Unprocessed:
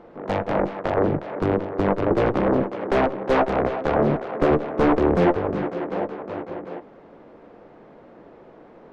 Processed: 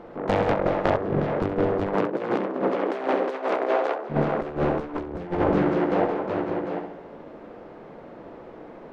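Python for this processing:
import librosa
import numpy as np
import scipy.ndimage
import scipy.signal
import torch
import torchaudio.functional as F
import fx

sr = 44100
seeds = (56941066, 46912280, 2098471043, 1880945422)

y = fx.echo_feedback(x, sr, ms=68, feedback_pct=51, wet_db=-7)
y = fx.over_compress(y, sr, threshold_db=-23.0, ratio=-0.5)
y = fx.highpass(y, sr, hz=fx.line((1.93, 150.0), (4.09, 380.0)), slope=24, at=(1.93, 4.09), fade=0.02)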